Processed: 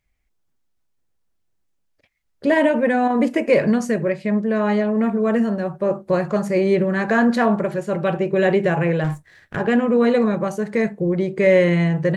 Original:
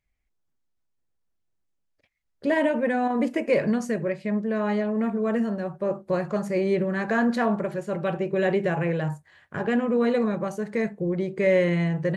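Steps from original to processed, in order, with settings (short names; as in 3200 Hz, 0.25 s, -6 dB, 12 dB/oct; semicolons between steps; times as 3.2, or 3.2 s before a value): 9.04–9.56 minimum comb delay 0.52 ms; gain +6 dB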